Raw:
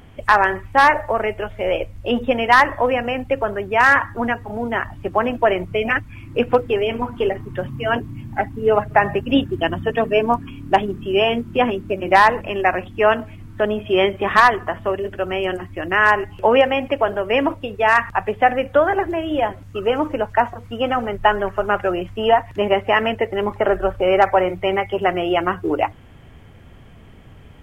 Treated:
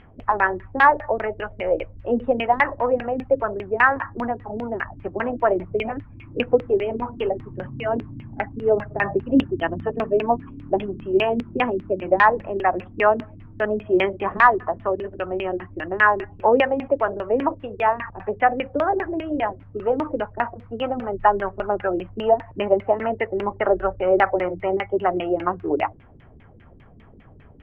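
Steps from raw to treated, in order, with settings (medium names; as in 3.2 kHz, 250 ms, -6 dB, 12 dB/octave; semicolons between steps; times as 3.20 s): vibrato 0.97 Hz 16 cents; LFO low-pass saw down 5 Hz 240–2800 Hz; trim -5.5 dB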